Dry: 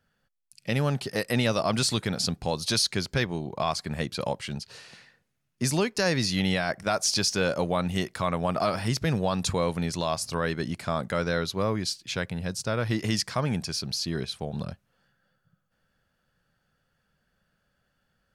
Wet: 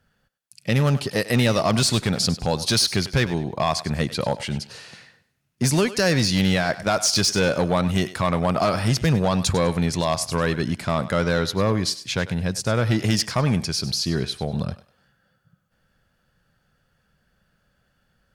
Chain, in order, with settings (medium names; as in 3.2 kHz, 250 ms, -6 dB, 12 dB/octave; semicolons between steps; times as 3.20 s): bass shelf 140 Hz +4.5 dB; Chebyshev shaper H 5 -17 dB, 7 -23 dB, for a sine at -13.5 dBFS; on a send: thinning echo 99 ms, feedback 30%, level -14 dB; on the sum: trim +3.5 dB